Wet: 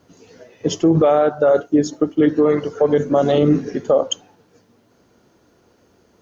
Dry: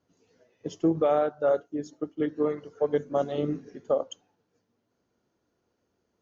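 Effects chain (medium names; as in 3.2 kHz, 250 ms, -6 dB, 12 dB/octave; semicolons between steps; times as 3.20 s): loudness maximiser +25 dB; trim -5.5 dB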